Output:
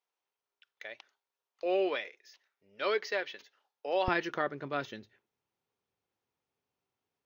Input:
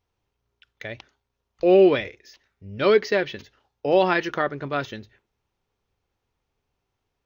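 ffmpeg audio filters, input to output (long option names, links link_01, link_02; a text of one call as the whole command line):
ffmpeg -i in.wav -af "asetnsamples=nb_out_samples=441:pad=0,asendcmd='4.08 highpass f 150',highpass=590,volume=-8dB" out.wav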